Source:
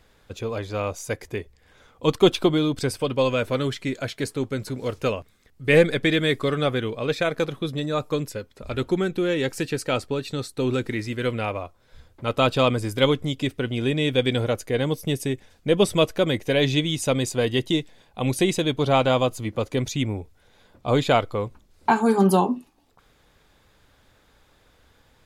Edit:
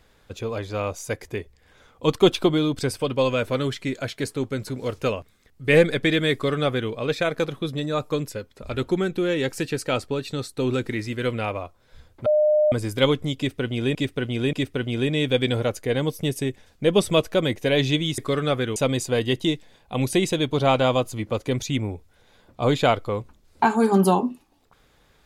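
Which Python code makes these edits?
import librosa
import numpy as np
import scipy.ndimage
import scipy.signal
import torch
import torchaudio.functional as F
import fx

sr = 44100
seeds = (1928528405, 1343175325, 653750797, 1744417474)

y = fx.edit(x, sr, fx.duplicate(start_s=6.33, length_s=0.58, to_s=17.02),
    fx.bleep(start_s=12.26, length_s=0.46, hz=606.0, db=-15.0),
    fx.repeat(start_s=13.37, length_s=0.58, count=3), tone=tone)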